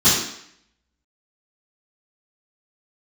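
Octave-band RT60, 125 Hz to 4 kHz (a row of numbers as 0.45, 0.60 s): 0.55, 0.70, 0.65, 0.70, 0.75, 0.70 s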